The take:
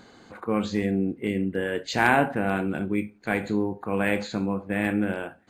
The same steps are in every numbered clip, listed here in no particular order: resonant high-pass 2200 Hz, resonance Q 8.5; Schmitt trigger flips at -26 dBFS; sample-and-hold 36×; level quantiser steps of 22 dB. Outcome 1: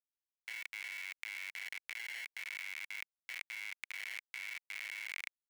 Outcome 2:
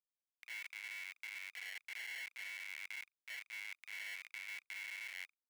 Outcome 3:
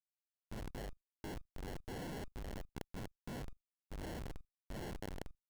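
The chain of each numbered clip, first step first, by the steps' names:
sample-and-hold > Schmitt trigger > resonant high-pass > level quantiser; Schmitt trigger > level quantiser > sample-and-hold > resonant high-pass; resonant high-pass > Schmitt trigger > sample-and-hold > level quantiser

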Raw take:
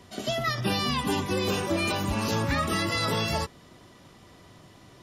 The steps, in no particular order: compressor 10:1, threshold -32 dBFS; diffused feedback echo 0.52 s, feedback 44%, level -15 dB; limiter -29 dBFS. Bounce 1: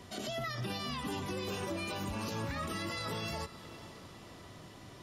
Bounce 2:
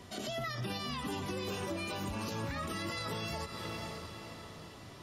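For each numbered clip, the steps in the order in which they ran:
compressor > limiter > diffused feedback echo; diffused feedback echo > compressor > limiter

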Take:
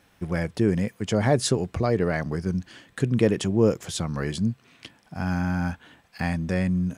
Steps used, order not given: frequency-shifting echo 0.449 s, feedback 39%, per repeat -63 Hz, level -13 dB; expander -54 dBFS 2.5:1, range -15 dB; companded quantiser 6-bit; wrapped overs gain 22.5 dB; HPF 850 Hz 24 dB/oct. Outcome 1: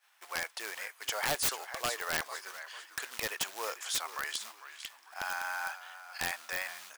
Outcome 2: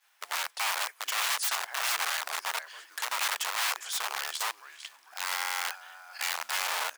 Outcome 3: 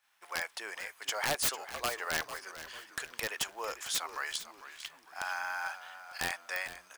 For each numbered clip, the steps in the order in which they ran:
companded quantiser > frequency-shifting echo > expander > HPF > wrapped overs; frequency-shifting echo > expander > companded quantiser > wrapped overs > HPF; HPF > companded quantiser > wrapped overs > frequency-shifting echo > expander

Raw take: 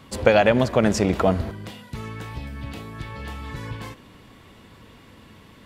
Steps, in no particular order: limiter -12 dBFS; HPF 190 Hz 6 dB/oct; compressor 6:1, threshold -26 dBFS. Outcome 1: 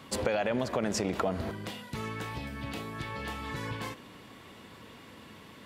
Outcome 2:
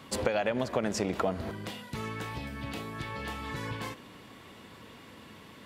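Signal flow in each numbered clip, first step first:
limiter > HPF > compressor; HPF > compressor > limiter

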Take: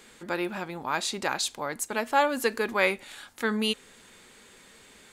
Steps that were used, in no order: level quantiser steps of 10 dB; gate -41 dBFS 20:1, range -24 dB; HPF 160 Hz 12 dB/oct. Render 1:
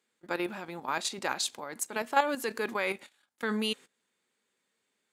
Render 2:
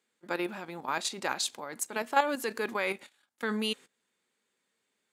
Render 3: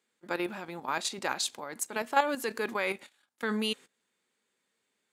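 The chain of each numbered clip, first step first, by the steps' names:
HPF > gate > level quantiser; gate > level quantiser > HPF; gate > HPF > level quantiser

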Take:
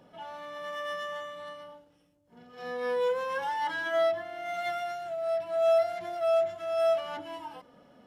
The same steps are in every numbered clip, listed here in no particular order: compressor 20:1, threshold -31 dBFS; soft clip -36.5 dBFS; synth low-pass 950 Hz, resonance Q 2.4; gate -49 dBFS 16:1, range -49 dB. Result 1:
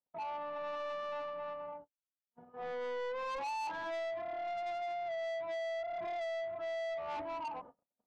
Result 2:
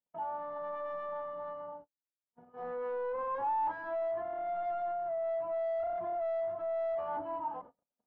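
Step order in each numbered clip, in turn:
compressor > synth low-pass > gate > soft clip; soft clip > compressor > synth low-pass > gate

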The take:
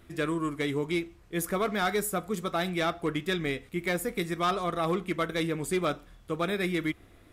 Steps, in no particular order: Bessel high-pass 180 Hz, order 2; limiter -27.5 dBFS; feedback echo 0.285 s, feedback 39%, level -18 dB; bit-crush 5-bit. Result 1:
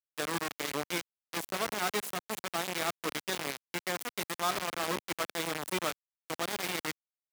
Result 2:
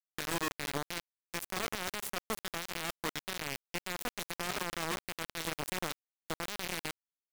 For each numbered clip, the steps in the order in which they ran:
limiter > feedback echo > bit-crush > Bessel high-pass; Bessel high-pass > limiter > feedback echo > bit-crush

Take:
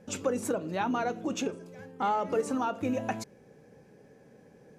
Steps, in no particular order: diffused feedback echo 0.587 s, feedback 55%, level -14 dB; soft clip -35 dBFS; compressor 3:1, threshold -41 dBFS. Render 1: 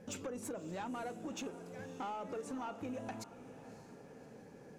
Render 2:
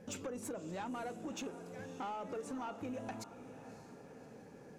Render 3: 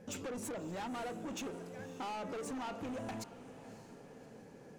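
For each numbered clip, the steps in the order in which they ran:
compressor > soft clip > diffused feedback echo; compressor > diffused feedback echo > soft clip; soft clip > compressor > diffused feedback echo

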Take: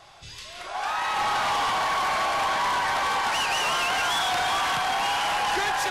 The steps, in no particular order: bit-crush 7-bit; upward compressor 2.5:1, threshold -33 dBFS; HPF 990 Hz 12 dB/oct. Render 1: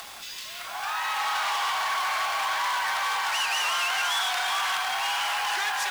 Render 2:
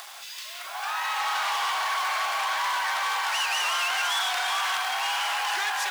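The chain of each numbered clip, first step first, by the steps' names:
HPF > upward compressor > bit-crush; upward compressor > bit-crush > HPF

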